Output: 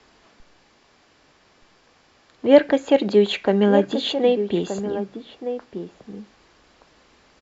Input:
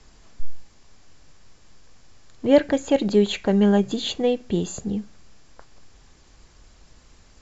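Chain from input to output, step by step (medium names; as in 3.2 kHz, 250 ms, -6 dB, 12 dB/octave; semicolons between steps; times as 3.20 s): high-pass 71 Hz 6 dB/octave; three-band isolator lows -12 dB, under 230 Hz, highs -16 dB, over 4.7 kHz; echo from a far wall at 210 m, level -9 dB; trim +4 dB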